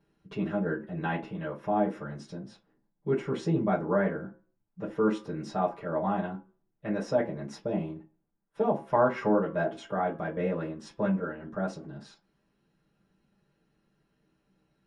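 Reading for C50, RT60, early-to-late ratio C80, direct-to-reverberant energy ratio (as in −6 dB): 12.5 dB, 0.40 s, 18.0 dB, −7.5 dB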